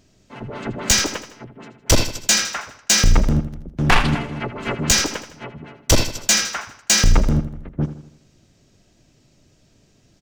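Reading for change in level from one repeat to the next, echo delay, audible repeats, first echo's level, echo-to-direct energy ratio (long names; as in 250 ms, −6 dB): −6.5 dB, 80 ms, 4, −12.0 dB, −11.0 dB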